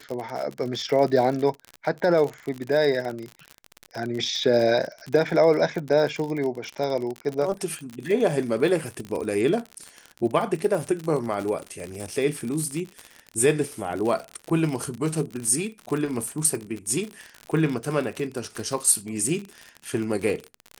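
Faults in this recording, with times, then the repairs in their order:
surface crackle 54 per second −28 dBFS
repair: click removal

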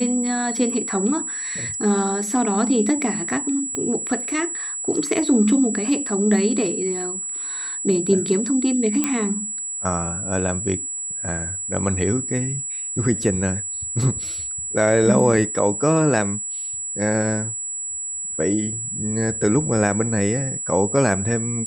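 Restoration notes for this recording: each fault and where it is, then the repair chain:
whistle 7,800 Hz −26 dBFS
0:03.75: click −13 dBFS
0:09.04: click −6 dBFS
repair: click removal
notch filter 7,800 Hz, Q 30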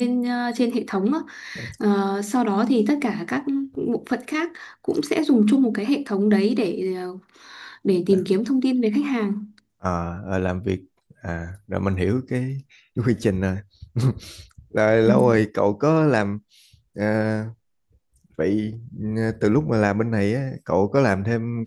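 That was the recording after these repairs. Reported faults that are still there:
0:03.75: click

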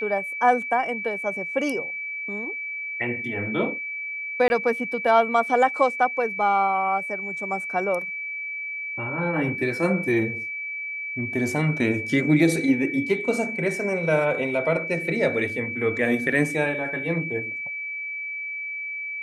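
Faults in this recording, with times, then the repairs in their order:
whistle 2,300 Hz −29 dBFS
0:04.48–0:04.50: drop-out 21 ms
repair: notch filter 2,300 Hz, Q 30
repair the gap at 0:04.48, 21 ms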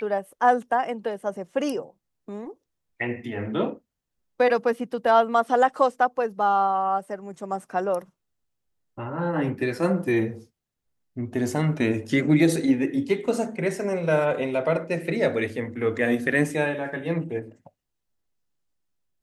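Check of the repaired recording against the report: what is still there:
none of them is left

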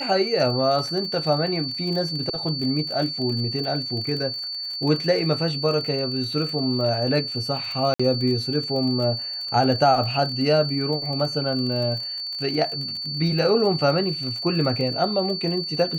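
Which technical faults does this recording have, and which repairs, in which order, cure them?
surface crackle 39 per second −30 dBFS
whistle 4,500 Hz −28 dBFS
0:07.94–0:08.00: drop-out 55 ms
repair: click removal
notch filter 4,500 Hz, Q 30
repair the gap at 0:07.94, 55 ms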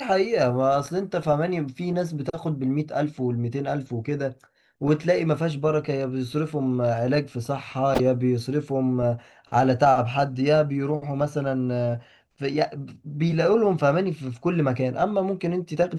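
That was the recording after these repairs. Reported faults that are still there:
none of them is left

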